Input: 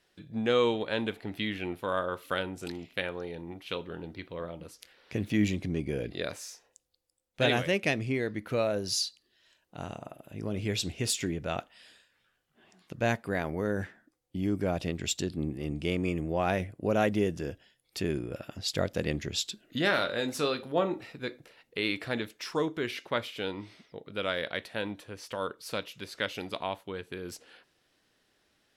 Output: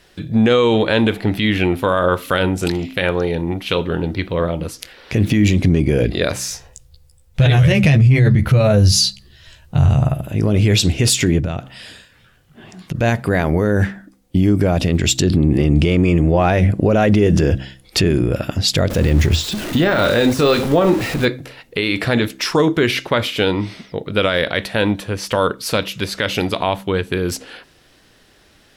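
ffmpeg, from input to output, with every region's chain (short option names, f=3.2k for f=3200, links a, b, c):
-filter_complex "[0:a]asettb=1/sr,asplit=3[a][b][c];[a]atrim=end=6.494[d];[b]atrim=start=6.49:end=10.21,asetpts=PTS-STARTPTS,afade=t=in:d=0.004:c=qsin,afade=t=out:st=3.716:d=0.004:c=qsin,lowshelf=f=180:t=q:w=1.5:g=13.5,asplit=2[e][f];[f]adelay=14,volume=-4.5dB[g];[e][g]amix=inputs=2:normalize=0,atrim=end_sample=164052[h];[c]atrim=start=10.206[i];[d][h]acrossfade=d=0.004:c1=hsin:c2=qsin[j];[j][i]acrossfade=d=0.004:c1=qsin:c2=hsin,asettb=1/sr,asplit=3[k][l][m];[k]atrim=end=11.394[n];[l]atrim=start=11.39:end=12.95,asetpts=PTS-STARTPTS,afade=t=in:d=0.004:c=qsin,afade=t=out:st=1.556:d=0.004:c=qsin,equalizer=f=120:w=0.72:g=9,acompressor=threshold=-39dB:ratio=10:attack=3.2:release=140:knee=1:detection=peak[o];[m]atrim=start=12.946[p];[n][o]acrossfade=d=0.004:c1=hsin:c2=qsin[q];[q][p]acrossfade=d=0.004:c1=qsin:c2=hsin,asettb=1/sr,asplit=3[r][s][t];[r]atrim=end=15.224[u];[s]atrim=start=15.22:end=18.1,asetpts=PTS-STARTPTS,afade=t=in:d=0.004:c=qsin,afade=t=out:st=2.876:d=0.004:c=qsin,highshelf=f=9.7k:g=-11.5,acontrast=81[v];[t]atrim=start=18.096[w];[u][v]acrossfade=d=0.004:c1=hsin:c2=qsin[x];[x][w]acrossfade=d=0.004:c1=qsin:c2=hsin,asettb=1/sr,asplit=3[y][z][aa];[y]atrim=end=18.904[ab];[z]atrim=start=18.9:end=21.25,asetpts=PTS-STARTPTS,afade=t=in:d=0.004:c=qsin,afade=t=out:st=2.346:d=0.004:c=qsin,aeval=exprs='val(0)+0.5*0.0106*sgn(val(0))':c=same,deesser=0.95,equalizer=f=80:t=o:w=0.25:g=7[ac];[aa]atrim=start=21.246[ad];[ab][ac]acrossfade=d=0.004:c1=hsin:c2=qsin[ae];[ae][ad]acrossfade=d=0.004:c1=qsin:c2=hsin,lowshelf=f=120:g=10,bandreject=f=65.41:t=h:w=4,bandreject=f=130.82:t=h:w=4,bandreject=f=196.23:t=h:w=4,bandreject=f=261.64:t=h:w=4,bandreject=f=327.05:t=h:w=4,alimiter=level_in=22.5dB:limit=-1dB:release=50:level=0:latency=1,volume=-4.5dB"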